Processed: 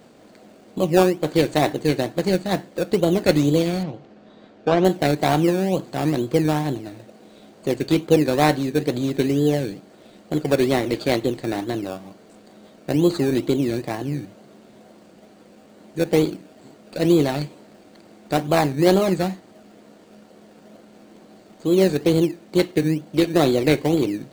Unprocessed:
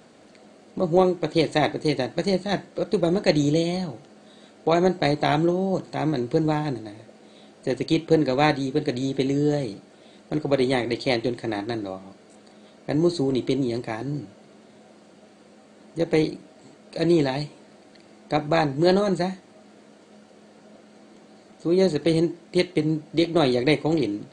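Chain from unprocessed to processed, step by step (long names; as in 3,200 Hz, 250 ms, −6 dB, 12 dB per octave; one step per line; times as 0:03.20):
in parallel at −3 dB: sample-and-hold swept by an LFO 17×, swing 60% 2.2 Hz
0:03.83–0:04.85: on the sum: high-frequency loss of the air 160 metres
level −1.5 dB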